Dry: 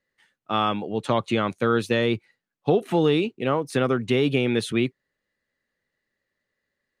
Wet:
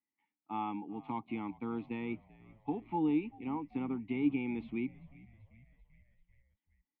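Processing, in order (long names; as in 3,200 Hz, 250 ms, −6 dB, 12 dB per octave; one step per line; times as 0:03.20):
formant filter u
parametric band 350 Hz −9.5 dB 0.74 octaves
harmonic and percussive parts rebalanced harmonic +4 dB
high-frequency loss of the air 410 metres
echo with shifted repeats 389 ms, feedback 64%, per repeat −62 Hz, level −21.5 dB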